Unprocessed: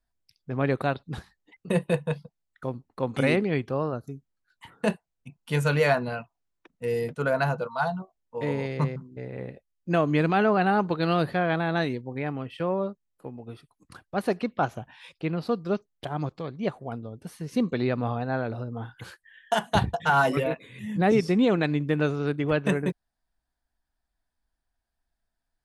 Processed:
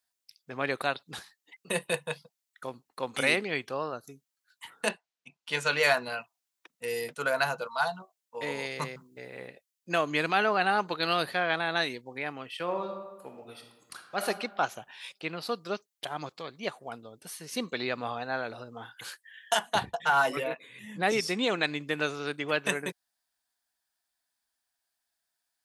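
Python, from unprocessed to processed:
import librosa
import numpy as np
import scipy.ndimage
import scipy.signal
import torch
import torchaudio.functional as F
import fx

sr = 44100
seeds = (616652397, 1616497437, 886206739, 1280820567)

y = fx.bandpass_edges(x, sr, low_hz=150.0, high_hz=fx.line((4.88, 4300.0), (5.82, 5800.0)), at=(4.88, 5.82), fade=0.02)
y = fx.high_shelf(y, sr, hz=8200.0, db=7.5, at=(8.55, 9.48))
y = fx.reverb_throw(y, sr, start_s=12.62, length_s=1.63, rt60_s=1.1, drr_db=4.0)
y = fx.high_shelf(y, sr, hz=2500.0, db=-9.5, at=(19.57, 21.03))
y = fx.highpass(y, sr, hz=850.0, slope=6)
y = fx.high_shelf(y, sr, hz=2800.0, db=10.0)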